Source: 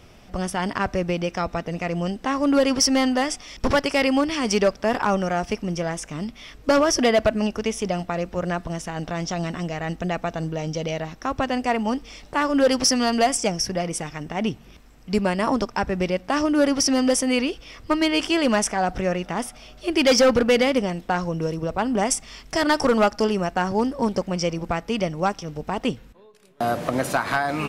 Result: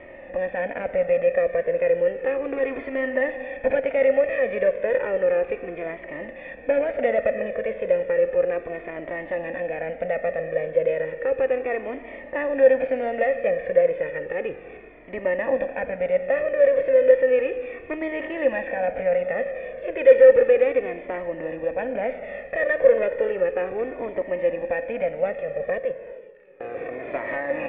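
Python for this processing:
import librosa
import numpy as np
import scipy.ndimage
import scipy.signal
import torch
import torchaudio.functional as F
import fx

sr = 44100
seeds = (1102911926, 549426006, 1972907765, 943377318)

y = fx.bin_compress(x, sr, power=0.6)
y = fx.low_shelf(y, sr, hz=110.0, db=-6.5)
y = fx.level_steps(y, sr, step_db=23, at=(25.79, 27.14))
y = fx.formant_cascade(y, sr, vowel='e')
y = fx.rev_gated(y, sr, seeds[0], gate_ms=440, shape='flat', drr_db=11.0)
y = fx.comb_cascade(y, sr, direction='falling', hz=0.33)
y = y * 10.0 ** (8.5 / 20.0)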